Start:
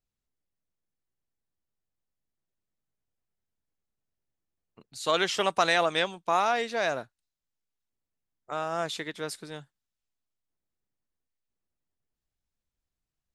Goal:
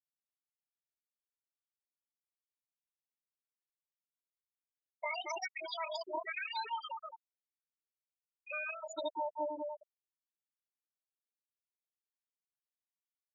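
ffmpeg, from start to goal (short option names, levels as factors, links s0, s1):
-filter_complex "[0:a]highpass=170,highshelf=f=2400:g=-5,asplit=2[s0][s1];[s1]adelay=196,lowpass=f=880:p=1,volume=0.668,asplit=2[s2][s3];[s3]adelay=196,lowpass=f=880:p=1,volume=0.38,asplit=2[s4][s5];[s5]adelay=196,lowpass=f=880:p=1,volume=0.38,asplit=2[s6][s7];[s7]adelay=196,lowpass=f=880:p=1,volume=0.38,asplit=2[s8][s9];[s9]adelay=196,lowpass=f=880:p=1,volume=0.38[s10];[s0][s2][s4][s6][s8][s10]amix=inputs=6:normalize=0,alimiter=limit=0.0891:level=0:latency=1:release=81,aresample=8000,aresample=44100,acompressor=threshold=0.01:ratio=2,equalizer=f=250:t=o:w=0.67:g=5,equalizer=f=630:t=o:w=0.67:g=-10,equalizer=f=2500:t=o:w=0.67:g=7,asetrate=85689,aresample=44100,atempo=0.514651,aecho=1:1:3.2:0.56,afftfilt=real='re*gte(hypot(re,im),0.0447)':imag='im*gte(hypot(re,im),0.0447)':win_size=1024:overlap=0.75,volume=1.68"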